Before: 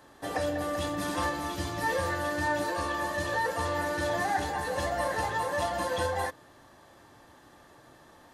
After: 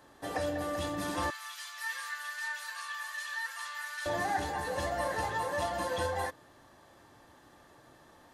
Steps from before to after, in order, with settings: 1.30–4.06 s: high-pass 1.3 kHz 24 dB/octave; trim -3 dB

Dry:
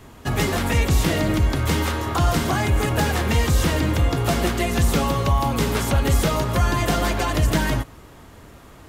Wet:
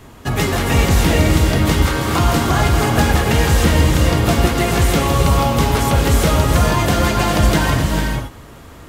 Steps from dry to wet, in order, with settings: gated-style reverb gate 480 ms rising, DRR 1.5 dB; trim +3.5 dB

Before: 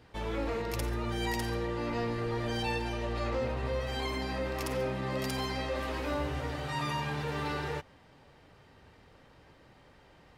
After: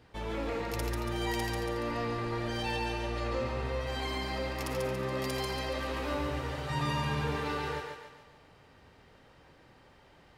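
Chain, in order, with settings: 6.70–7.36 s: bass shelf 220 Hz +9 dB; on a send: thinning echo 141 ms, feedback 49%, high-pass 340 Hz, level -3.5 dB; on the sum: trim -1.5 dB

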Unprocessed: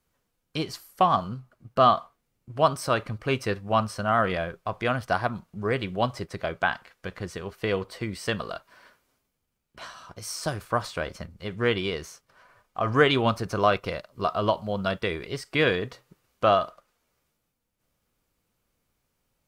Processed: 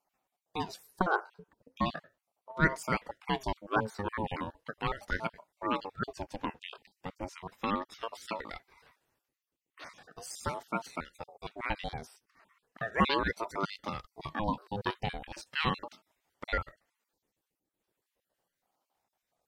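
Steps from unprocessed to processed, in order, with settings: random holes in the spectrogram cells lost 49%; ring modulator with a swept carrier 550 Hz, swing 45%, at 0.37 Hz; trim -2.5 dB

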